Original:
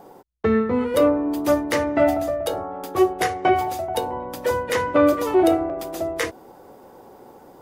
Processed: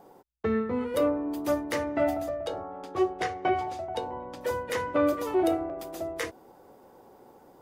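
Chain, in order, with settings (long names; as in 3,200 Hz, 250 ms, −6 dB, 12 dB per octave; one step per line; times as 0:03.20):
0:02.29–0:04.41: low-pass filter 5,900 Hz 12 dB per octave
level −8 dB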